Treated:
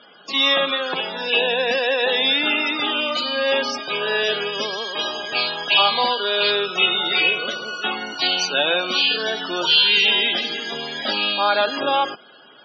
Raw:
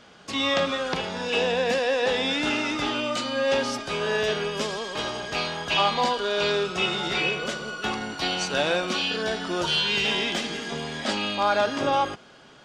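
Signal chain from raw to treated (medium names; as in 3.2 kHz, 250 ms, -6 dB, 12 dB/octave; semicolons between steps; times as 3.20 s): loudest bins only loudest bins 64; band-pass 270–6200 Hz; peaking EQ 4.4 kHz +9 dB 2.3 oct; trim +2 dB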